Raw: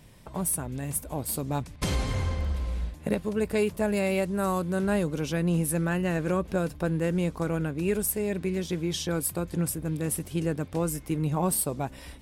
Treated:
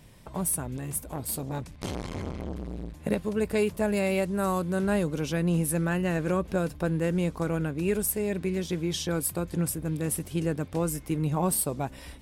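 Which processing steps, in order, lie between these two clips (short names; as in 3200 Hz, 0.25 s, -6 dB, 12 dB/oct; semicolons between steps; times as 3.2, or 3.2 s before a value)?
0.77–3.05 core saturation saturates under 760 Hz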